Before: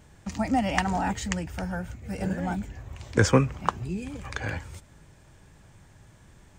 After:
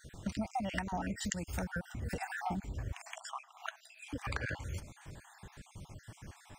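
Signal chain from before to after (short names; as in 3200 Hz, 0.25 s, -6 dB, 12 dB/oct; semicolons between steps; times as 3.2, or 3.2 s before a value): random spectral dropouts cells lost 45%; 1.23–1.63 high shelf 4100 Hz -> 6000 Hz +9 dB; compressor 6:1, threshold -40 dBFS, peak gain reduction 22 dB; 2.97–4.13 brick-wall FIR high-pass 630 Hz; gain +5.5 dB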